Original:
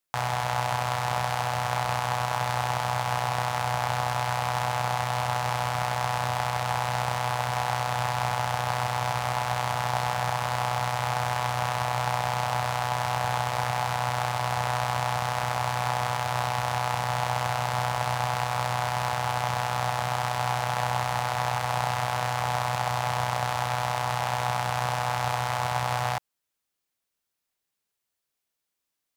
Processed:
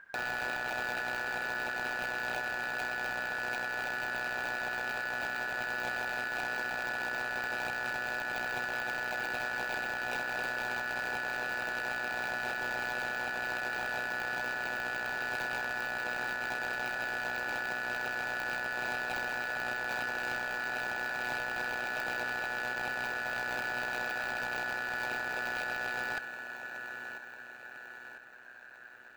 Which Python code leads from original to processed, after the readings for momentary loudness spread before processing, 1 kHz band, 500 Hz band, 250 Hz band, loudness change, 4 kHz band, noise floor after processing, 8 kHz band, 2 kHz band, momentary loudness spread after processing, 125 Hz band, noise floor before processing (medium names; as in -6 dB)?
1 LU, -13.0 dB, -8.5 dB, -6.0 dB, -6.5 dB, -9.5 dB, -48 dBFS, -13.0 dB, +2.0 dB, 1 LU, -24.5 dB, -83 dBFS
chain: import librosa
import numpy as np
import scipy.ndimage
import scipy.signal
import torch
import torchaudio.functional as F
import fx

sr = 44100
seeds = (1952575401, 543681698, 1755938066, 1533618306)

y = fx.halfwave_hold(x, sr)
y = scipy.signal.sosfilt(scipy.signal.butter(4, 61.0, 'highpass', fs=sr, output='sos'), y)
y = fx.high_shelf(y, sr, hz=11000.0, db=7.0)
y = fx.fixed_phaser(y, sr, hz=2400.0, stages=8)
y = fx.echo_feedback(y, sr, ms=998, feedback_pct=49, wet_db=-20.5)
y = fx.over_compress(y, sr, threshold_db=-26.0, ratio=-1.0)
y = fx.dmg_noise_colour(y, sr, seeds[0], colour='brown', level_db=-50.0)
y = y * np.sin(2.0 * np.pi * 1600.0 * np.arange(len(y)) / sr)
y = fx.high_shelf(y, sr, hz=2400.0, db=-11.5)
y = 10.0 ** (-28.5 / 20.0) * np.tanh(y / 10.0 ** (-28.5 / 20.0))